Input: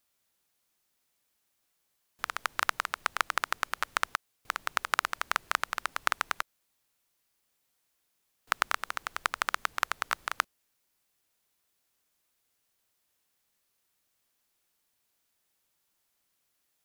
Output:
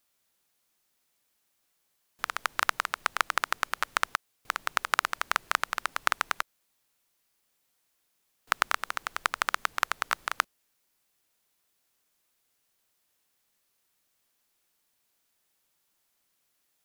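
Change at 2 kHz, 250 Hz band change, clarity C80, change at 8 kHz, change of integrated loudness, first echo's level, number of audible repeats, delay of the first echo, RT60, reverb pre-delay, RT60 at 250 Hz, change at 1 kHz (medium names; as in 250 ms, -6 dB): +2.0 dB, +2.0 dB, no reverb, +2.0 dB, +2.0 dB, no echo, no echo, no echo, no reverb, no reverb, no reverb, +2.0 dB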